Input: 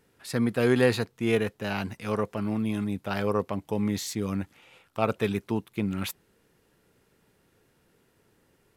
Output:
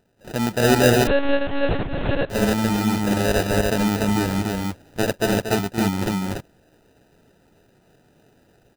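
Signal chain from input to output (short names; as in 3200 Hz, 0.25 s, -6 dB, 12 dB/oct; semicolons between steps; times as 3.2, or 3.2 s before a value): AGC gain up to 6 dB; sample-rate reducer 1100 Hz, jitter 0%; loudspeakers at several distances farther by 80 m -9 dB, 100 m -2 dB; 1.07–2.3 monotone LPC vocoder at 8 kHz 280 Hz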